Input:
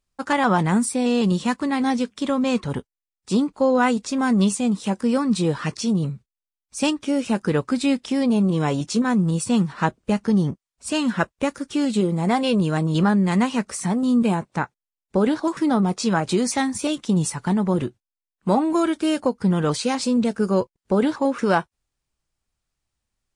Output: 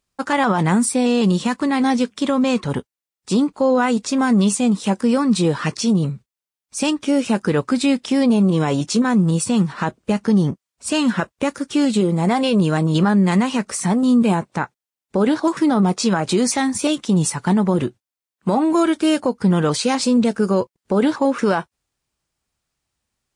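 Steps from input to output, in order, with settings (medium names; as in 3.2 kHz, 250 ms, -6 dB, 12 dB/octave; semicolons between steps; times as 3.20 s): high-pass 96 Hz 6 dB/octave; peak limiter -13.5 dBFS, peak gain reduction 8.5 dB; trim +5 dB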